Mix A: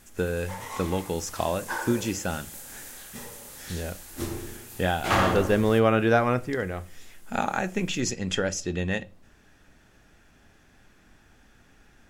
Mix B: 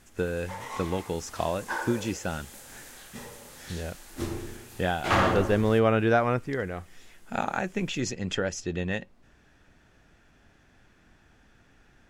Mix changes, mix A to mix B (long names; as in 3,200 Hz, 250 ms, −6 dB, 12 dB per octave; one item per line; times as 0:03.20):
speech: send off
master: add high-shelf EQ 8,700 Hz −11 dB